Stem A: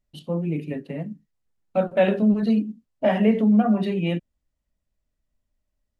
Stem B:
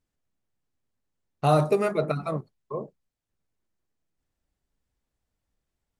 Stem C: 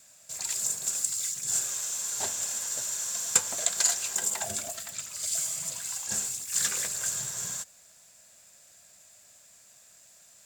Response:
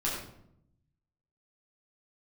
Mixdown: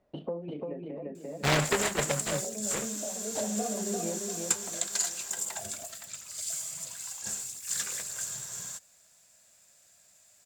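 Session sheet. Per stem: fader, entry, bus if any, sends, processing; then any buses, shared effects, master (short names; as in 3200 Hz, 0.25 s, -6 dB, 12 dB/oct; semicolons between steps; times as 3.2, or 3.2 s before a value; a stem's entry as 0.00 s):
-8.5 dB, 0.00 s, no send, echo send -3.5 dB, band-pass 590 Hz, Q 1.4; three-band squash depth 100%; auto duck -11 dB, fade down 1.00 s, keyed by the second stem
-5.5 dB, 0.00 s, no send, no echo send, noise-modulated delay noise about 1200 Hz, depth 0.3 ms
-5.0 dB, 1.15 s, no send, no echo send, dry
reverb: off
echo: feedback echo 0.345 s, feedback 37%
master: dry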